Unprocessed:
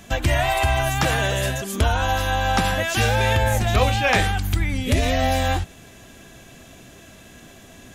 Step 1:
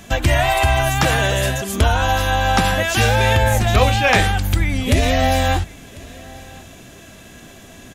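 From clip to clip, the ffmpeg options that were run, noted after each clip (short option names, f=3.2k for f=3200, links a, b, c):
-af "aecho=1:1:1046:0.0708,volume=4dB"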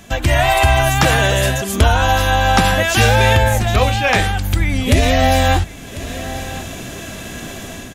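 -af "dynaudnorm=f=130:g=5:m=12.5dB,volume=-1dB"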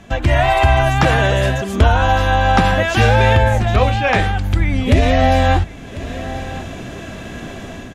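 -af "aemphasis=mode=reproduction:type=75fm"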